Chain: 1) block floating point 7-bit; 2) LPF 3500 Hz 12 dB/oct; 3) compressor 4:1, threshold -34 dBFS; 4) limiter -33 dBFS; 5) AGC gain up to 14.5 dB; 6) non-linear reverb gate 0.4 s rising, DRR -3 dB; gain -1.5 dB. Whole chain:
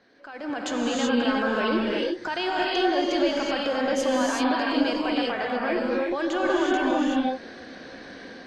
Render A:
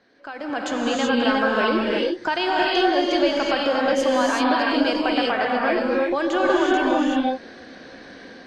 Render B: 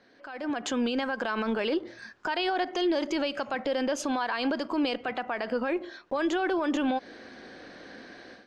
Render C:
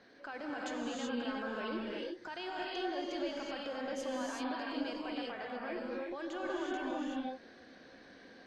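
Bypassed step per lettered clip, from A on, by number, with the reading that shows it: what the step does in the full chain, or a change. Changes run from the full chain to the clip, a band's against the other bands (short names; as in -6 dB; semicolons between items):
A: 4, mean gain reduction 2.0 dB; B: 6, momentary loudness spread change +4 LU; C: 5, momentary loudness spread change -5 LU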